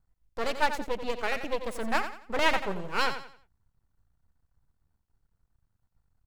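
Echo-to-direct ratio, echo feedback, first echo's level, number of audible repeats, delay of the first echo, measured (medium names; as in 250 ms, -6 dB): -9.5 dB, 33%, -10.0 dB, 3, 89 ms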